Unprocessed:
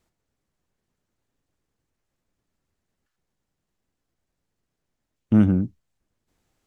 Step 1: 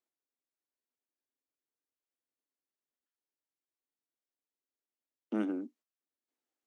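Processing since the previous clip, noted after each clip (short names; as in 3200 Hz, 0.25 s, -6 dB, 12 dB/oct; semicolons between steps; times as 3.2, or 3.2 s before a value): steep high-pass 240 Hz 72 dB/oct; gate -54 dBFS, range -11 dB; gain -8 dB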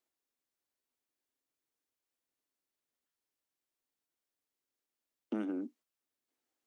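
compressor 6:1, threshold -36 dBFS, peak gain reduction 8.5 dB; gain +3.5 dB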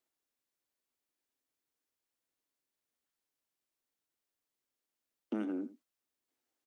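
echo 84 ms -15.5 dB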